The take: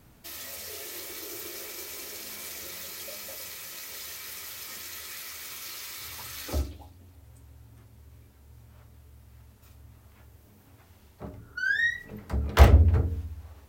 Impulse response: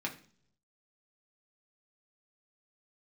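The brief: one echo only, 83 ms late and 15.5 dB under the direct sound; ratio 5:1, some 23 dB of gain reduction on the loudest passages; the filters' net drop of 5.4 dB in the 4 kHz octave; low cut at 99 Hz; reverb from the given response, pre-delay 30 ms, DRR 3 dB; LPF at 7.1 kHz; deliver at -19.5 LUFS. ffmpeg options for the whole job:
-filter_complex "[0:a]highpass=99,lowpass=7100,equalizer=f=4000:t=o:g=-6.5,acompressor=threshold=0.00794:ratio=5,aecho=1:1:83:0.168,asplit=2[s0][s1];[1:a]atrim=start_sample=2205,adelay=30[s2];[s1][s2]afir=irnorm=-1:irlink=0,volume=0.501[s3];[s0][s3]amix=inputs=2:normalize=0,volume=15"

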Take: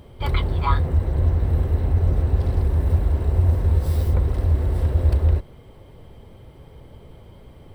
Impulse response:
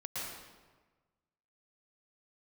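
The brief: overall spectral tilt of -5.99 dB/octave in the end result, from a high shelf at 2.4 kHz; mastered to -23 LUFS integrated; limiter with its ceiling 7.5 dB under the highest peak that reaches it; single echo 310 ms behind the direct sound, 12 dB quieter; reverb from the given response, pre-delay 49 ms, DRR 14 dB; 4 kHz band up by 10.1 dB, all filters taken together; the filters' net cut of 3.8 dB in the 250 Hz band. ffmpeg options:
-filter_complex "[0:a]equalizer=f=250:t=o:g=-6.5,highshelf=f=2400:g=8.5,equalizer=f=4000:t=o:g=5.5,alimiter=limit=0.2:level=0:latency=1,aecho=1:1:310:0.251,asplit=2[s0][s1];[1:a]atrim=start_sample=2205,adelay=49[s2];[s1][s2]afir=irnorm=-1:irlink=0,volume=0.158[s3];[s0][s3]amix=inputs=2:normalize=0,volume=1.06"

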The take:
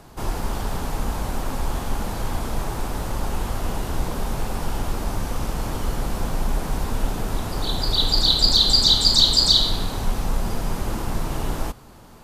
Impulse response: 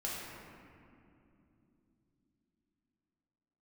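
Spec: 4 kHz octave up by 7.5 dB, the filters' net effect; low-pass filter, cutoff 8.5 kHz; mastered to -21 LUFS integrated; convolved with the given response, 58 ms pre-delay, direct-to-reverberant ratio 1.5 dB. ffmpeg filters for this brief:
-filter_complex "[0:a]lowpass=8500,equalizer=f=4000:t=o:g=8.5,asplit=2[s0][s1];[1:a]atrim=start_sample=2205,adelay=58[s2];[s1][s2]afir=irnorm=-1:irlink=0,volume=0.596[s3];[s0][s3]amix=inputs=2:normalize=0,volume=0.282"

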